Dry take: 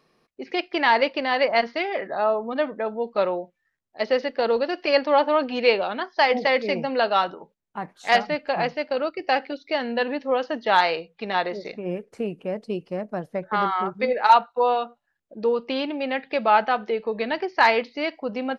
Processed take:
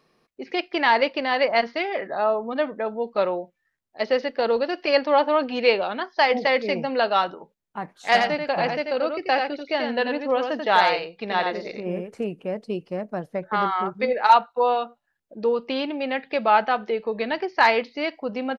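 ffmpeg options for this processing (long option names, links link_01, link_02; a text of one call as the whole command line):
ffmpeg -i in.wav -filter_complex "[0:a]asplit=3[link_01][link_02][link_03];[link_01]afade=type=out:start_time=8.11:duration=0.02[link_04];[link_02]aecho=1:1:88:0.562,afade=type=in:start_time=8.11:duration=0.02,afade=type=out:start_time=12.23:duration=0.02[link_05];[link_03]afade=type=in:start_time=12.23:duration=0.02[link_06];[link_04][link_05][link_06]amix=inputs=3:normalize=0" out.wav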